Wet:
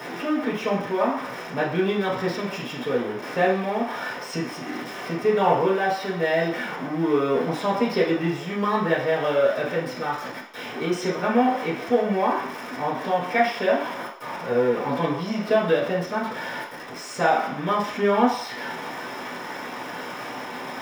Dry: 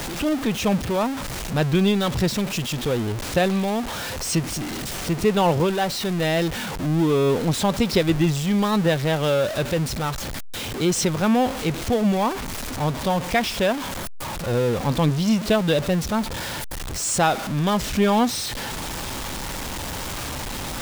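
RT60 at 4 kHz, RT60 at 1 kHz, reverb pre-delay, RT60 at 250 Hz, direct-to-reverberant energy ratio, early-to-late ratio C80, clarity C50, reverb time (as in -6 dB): 0.65 s, 0.65 s, 3 ms, 0.45 s, -7.0 dB, 8.0 dB, 4.5 dB, 0.60 s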